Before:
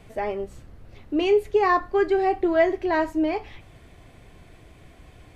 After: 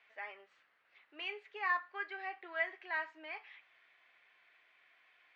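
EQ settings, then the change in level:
four-pole ladder band-pass 2,400 Hz, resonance 25%
high-frequency loss of the air 99 metres
high-shelf EQ 3,600 Hz −6.5 dB
+5.5 dB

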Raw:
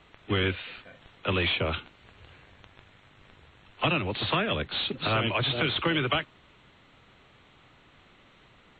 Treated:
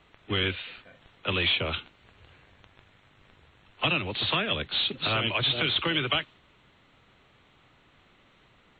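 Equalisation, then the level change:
dynamic equaliser 3,500 Hz, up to +7 dB, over −43 dBFS, Q 1
−3.0 dB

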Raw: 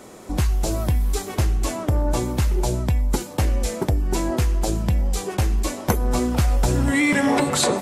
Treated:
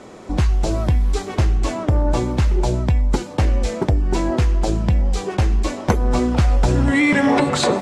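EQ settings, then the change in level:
high-frequency loss of the air 89 metres
+3.5 dB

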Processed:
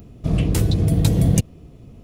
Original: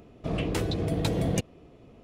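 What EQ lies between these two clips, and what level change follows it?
bass and treble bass +14 dB, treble +7 dB
high-shelf EQ 9,800 Hz +11 dB
0.0 dB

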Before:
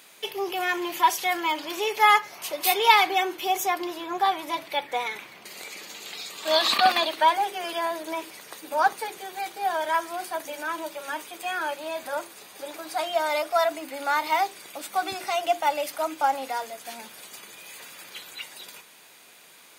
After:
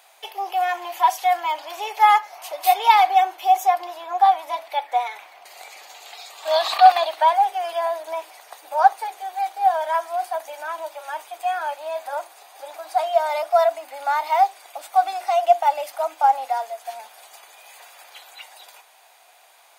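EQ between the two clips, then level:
high-pass with resonance 730 Hz, resonance Q 4.9
−4.0 dB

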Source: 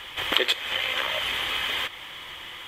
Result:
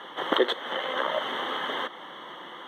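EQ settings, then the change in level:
moving average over 18 samples
Butterworth high-pass 180 Hz 36 dB per octave
+7.0 dB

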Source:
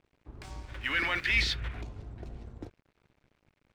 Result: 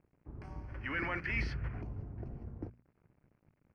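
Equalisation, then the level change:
moving average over 12 samples
parametric band 140 Hz +8 dB 2.1 octaves
mains-hum notches 60/120/180/240 Hz
−3.5 dB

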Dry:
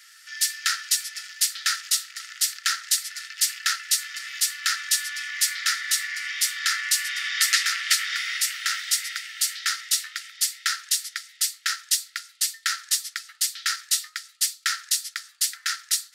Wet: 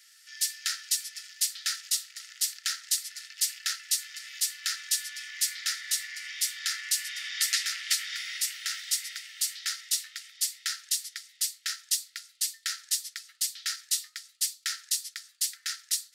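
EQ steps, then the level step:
parametric band 910 Hz −14.5 dB 1.6 octaves
−4.5 dB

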